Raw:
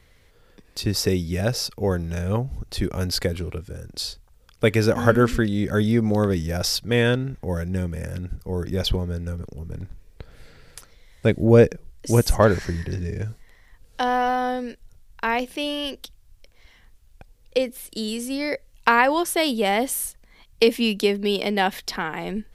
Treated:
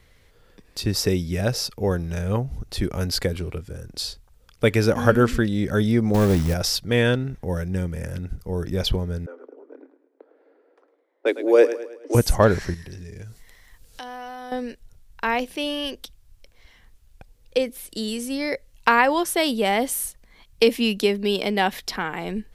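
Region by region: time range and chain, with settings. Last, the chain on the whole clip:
6.14–6.54 low shelf 450 Hz +6 dB + hard clip -12 dBFS + short-mantissa float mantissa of 2-bit
9.26–12.15 low-pass opened by the level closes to 580 Hz, open at -15 dBFS + steep high-pass 270 Hz 96 dB/oct + feedback echo 0.106 s, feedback 47%, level -13.5 dB
12.74–14.52 high shelf 3200 Hz +10 dB + compressor 2.5:1, threshold -40 dBFS
whole clip: dry

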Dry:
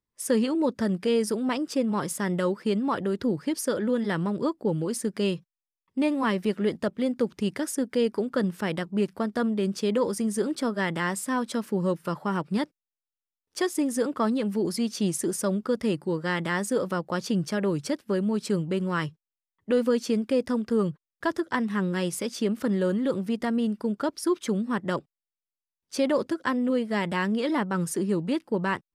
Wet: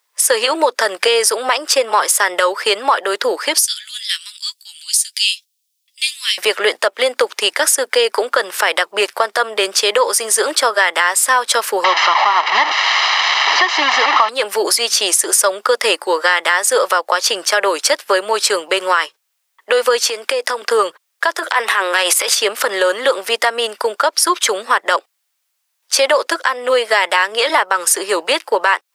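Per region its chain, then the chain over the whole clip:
3.58–6.38 inverse Chebyshev high-pass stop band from 540 Hz, stop band 80 dB + doubler 13 ms -9 dB
11.84–14.29 delta modulation 32 kbps, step -25.5 dBFS + LPF 2900 Hz + comb 1 ms, depth 73%
20.08–20.62 HPF 190 Hz + compressor 12:1, threshold -29 dBFS
21.38–22.36 HPF 360 Hz + bell 5500 Hz -5.5 dB 0.61 oct + transient shaper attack -11 dB, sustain +11 dB
whole clip: Bessel high-pass 860 Hz, order 6; compressor 6:1, threshold -36 dBFS; maximiser +27.5 dB; gain -1 dB

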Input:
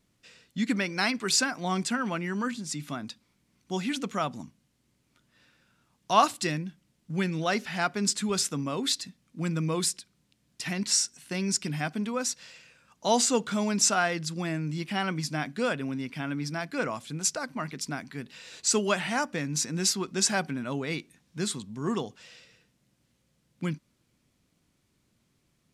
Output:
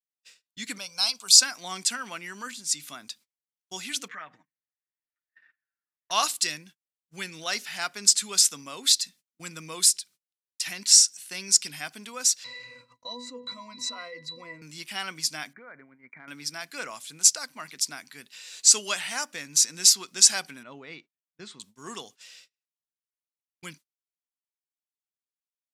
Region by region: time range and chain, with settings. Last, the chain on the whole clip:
0.78–1.42 dynamic EQ 4300 Hz, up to +4 dB, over -36 dBFS, Q 1.5 + fixed phaser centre 780 Hz, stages 4
4.08–6.11 comb 6.5 ms + compressor 4:1, threshold -38 dBFS + synth low-pass 1800 Hz, resonance Q 7.7
12.44–14.62 octave resonator B, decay 0.2 s + fast leveller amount 70%
15.53–16.28 brick-wall FIR low-pass 2400 Hz + compressor 8:1, threshold -35 dBFS
20.63–21.6 tape spacing loss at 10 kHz 33 dB + notch 1600 Hz, Q 23
whole clip: tilt +4.5 dB/oct; gate -45 dBFS, range -34 dB; dynamic EQ 4800 Hz, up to +4 dB, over -28 dBFS, Q 0.9; gain -5.5 dB

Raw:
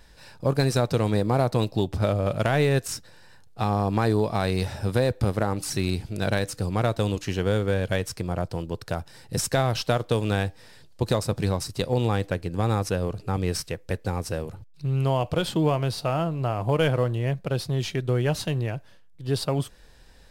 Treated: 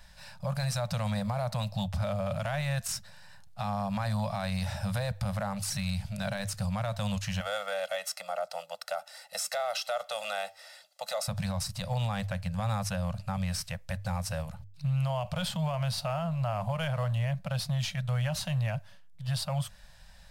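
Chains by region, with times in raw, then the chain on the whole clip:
7.4–11.28 HPF 410 Hz 24 dB/oct + comb 1.5 ms, depth 83%
whole clip: elliptic band-stop 200–580 Hz, stop band 40 dB; notches 50/100 Hz; limiter -23.5 dBFS

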